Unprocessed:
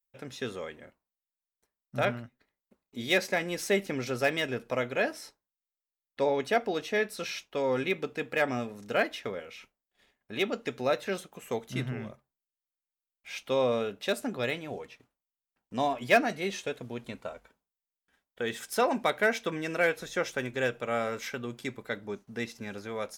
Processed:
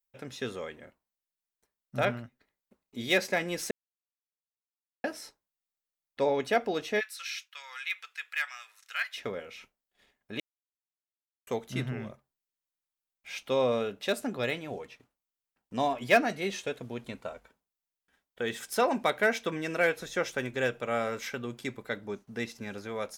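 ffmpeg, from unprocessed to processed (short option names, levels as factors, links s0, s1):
-filter_complex "[0:a]asplit=3[s0][s1][s2];[s0]afade=t=out:st=6.99:d=0.02[s3];[s1]highpass=f=1400:w=0.5412,highpass=f=1400:w=1.3066,afade=t=in:st=6.99:d=0.02,afade=t=out:st=9.16:d=0.02[s4];[s2]afade=t=in:st=9.16:d=0.02[s5];[s3][s4][s5]amix=inputs=3:normalize=0,asplit=5[s6][s7][s8][s9][s10];[s6]atrim=end=3.71,asetpts=PTS-STARTPTS,afade=t=out:st=3.706:d=0.004:c=hsin[s11];[s7]atrim=start=3.71:end=5.04,asetpts=PTS-STARTPTS,volume=0[s12];[s8]atrim=start=5.04:end=10.4,asetpts=PTS-STARTPTS,afade=t=in:d=0.004:c=hsin,afade=t=out:st=5.356:d=0.004:c=hsin[s13];[s9]atrim=start=10.4:end=11.47,asetpts=PTS-STARTPTS,volume=0[s14];[s10]atrim=start=11.47,asetpts=PTS-STARTPTS,afade=t=in:d=0.004:c=hsin[s15];[s11][s12][s13][s14][s15]concat=n=5:v=0:a=1"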